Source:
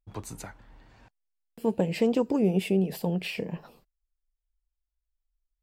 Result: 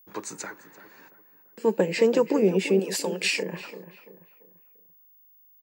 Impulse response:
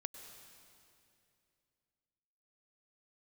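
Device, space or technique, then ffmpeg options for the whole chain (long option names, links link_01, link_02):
old television with a line whistle: -filter_complex "[0:a]asettb=1/sr,asplit=3[link_01][link_02][link_03];[link_01]atrim=end=2.794[link_04];[link_02]atrim=start=2.79:end=3.43,asetpts=PTS-STARTPTS,afade=type=in:duration=0.004:curve=qsin,afade=type=out:start_time=0.636:duration=0.004:curve=qsin,aemphasis=mode=production:type=riaa[link_05];[link_03]atrim=start=3.426[link_06];[link_04][link_05]acrossfade=duration=0.004:curve1=hsin:curve2=qsin[link_07];[link_07][link_06]acrossfade=duration=0.004:curve1=qsin:curve2=hsin,highpass=frequency=220:width=0.5412,highpass=frequency=220:width=1.3066,equalizer=frequency=250:width_type=q:width=4:gain=-9,equalizer=frequency=710:width_type=q:width=4:gain=-10,equalizer=frequency=1700:width_type=q:width=4:gain=5,equalizer=frequency=3200:width_type=q:width=4:gain=-7,equalizer=frequency=6900:width_type=q:width=4:gain=5,lowpass=frequency=7700:width=0.5412,lowpass=frequency=7700:width=1.3066,aeval=exprs='val(0)+0.000891*sin(2*PI*15625*n/s)':channel_layout=same,asplit=2[link_08][link_09];[link_09]adelay=340,lowpass=frequency=2000:poles=1,volume=-12.5dB,asplit=2[link_10][link_11];[link_11]adelay=340,lowpass=frequency=2000:poles=1,volume=0.41,asplit=2[link_12][link_13];[link_13]adelay=340,lowpass=frequency=2000:poles=1,volume=0.41,asplit=2[link_14][link_15];[link_15]adelay=340,lowpass=frequency=2000:poles=1,volume=0.41[link_16];[link_08][link_10][link_12][link_14][link_16]amix=inputs=5:normalize=0,volume=7dB"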